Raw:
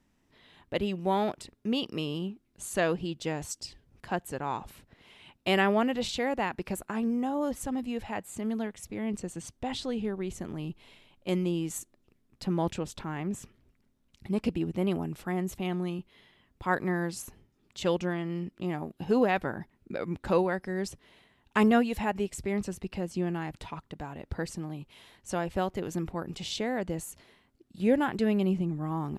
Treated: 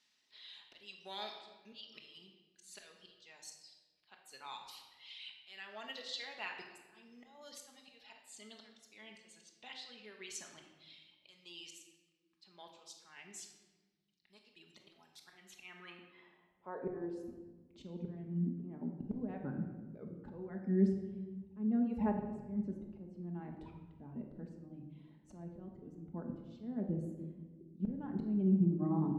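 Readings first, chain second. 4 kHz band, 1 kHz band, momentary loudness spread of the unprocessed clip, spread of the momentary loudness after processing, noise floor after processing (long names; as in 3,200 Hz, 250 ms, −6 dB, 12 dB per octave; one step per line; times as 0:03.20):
−10.0 dB, −17.0 dB, 14 LU, 24 LU, −76 dBFS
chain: reverb reduction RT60 1.8 s
downward compressor 8 to 1, threshold −28 dBFS, peak gain reduction 10 dB
band-pass filter sweep 4,200 Hz → 230 Hz, 0:15.17–0:17.33
volume swells 588 ms
rectangular room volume 980 cubic metres, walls mixed, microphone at 1.4 metres
level +10.5 dB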